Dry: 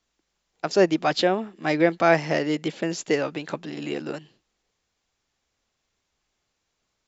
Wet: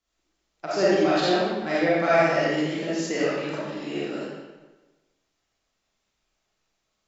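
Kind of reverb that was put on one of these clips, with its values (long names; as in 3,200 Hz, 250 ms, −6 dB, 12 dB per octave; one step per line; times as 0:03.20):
comb and all-pass reverb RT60 1.2 s, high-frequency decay 0.85×, pre-delay 10 ms, DRR −9 dB
level −9 dB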